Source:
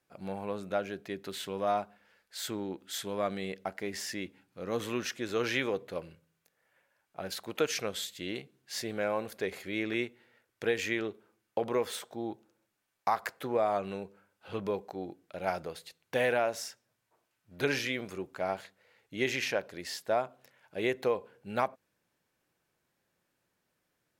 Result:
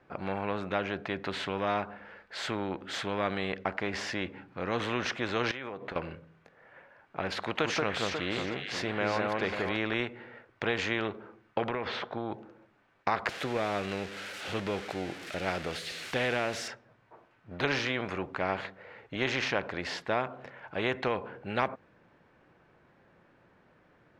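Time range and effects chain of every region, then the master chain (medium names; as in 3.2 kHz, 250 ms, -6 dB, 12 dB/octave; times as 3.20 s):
5.51–5.96 s: high-pass 230 Hz 6 dB/octave + compression 10:1, threshold -45 dBFS
7.42–9.77 s: echo whose repeats swap between lows and highs 180 ms, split 1.8 kHz, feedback 55%, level -2.5 dB + tape noise reduction on one side only encoder only
11.69–12.32 s: low-pass 5 kHz 24 dB/octave + compression, threshold -33 dBFS
13.29–16.68 s: zero-crossing glitches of -31 dBFS + peaking EQ 990 Hz -11.5 dB 0.81 oct
whole clip: low-pass 1.8 kHz 12 dB/octave; spectrum-flattening compressor 2:1; trim +5 dB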